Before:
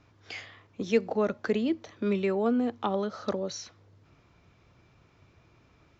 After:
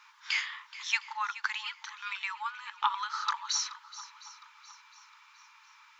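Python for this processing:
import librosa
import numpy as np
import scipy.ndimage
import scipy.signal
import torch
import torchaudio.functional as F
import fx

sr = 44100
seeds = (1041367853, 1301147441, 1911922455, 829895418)

p1 = fx.rider(x, sr, range_db=4, speed_s=0.5)
p2 = fx.brickwall_highpass(p1, sr, low_hz=840.0)
p3 = p2 + fx.echo_swing(p2, sr, ms=710, ratio=1.5, feedback_pct=37, wet_db=-16, dry=0)
y = p3 * librosa.db_to_amplitude(6.5)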